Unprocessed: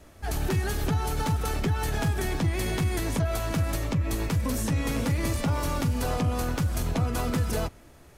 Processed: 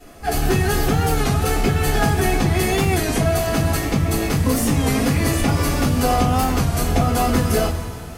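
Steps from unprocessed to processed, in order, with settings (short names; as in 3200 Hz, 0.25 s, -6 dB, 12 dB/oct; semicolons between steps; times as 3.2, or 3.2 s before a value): two-slope reverb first 0.2 s, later 2.9 s, from -19 dB, DRR -10 dB; record warp 33 1/3 rpm, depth 100 cents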